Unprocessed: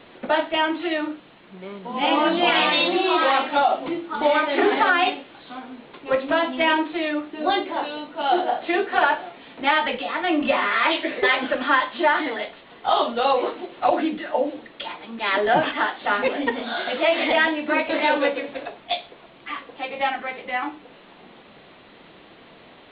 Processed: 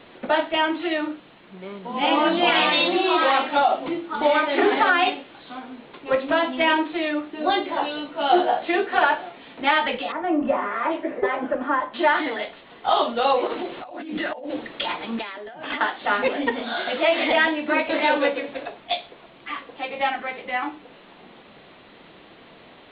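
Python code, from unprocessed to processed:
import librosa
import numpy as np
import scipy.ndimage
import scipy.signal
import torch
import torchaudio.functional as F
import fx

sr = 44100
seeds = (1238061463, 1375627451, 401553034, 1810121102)

y = fx.doubler(x, sr, ms=14.0, db=-3.0, at=(7.63, 8.63))
y = fx.lowpass(y, sr, hz=1100.0, slope=12, at=(10.12, 11.94))
y = fx.over_compress(y, sr, threshold_db=-32.0, ratio=-1.0, at=(13.47, 15.81))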